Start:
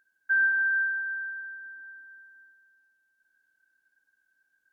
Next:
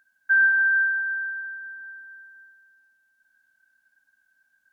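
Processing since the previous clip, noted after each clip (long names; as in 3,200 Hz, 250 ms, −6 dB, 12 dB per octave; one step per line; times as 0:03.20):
Chebyshev band-stop filter 270–570 Hz, order 2
level +6 dB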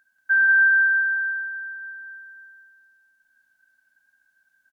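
single-tap delay 185 ms −4 dB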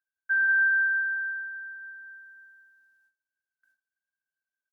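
noise gate with hold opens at −54 dBFS
level −6 dB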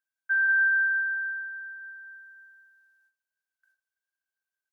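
high-pass filter 470 Hz 12 dB per octave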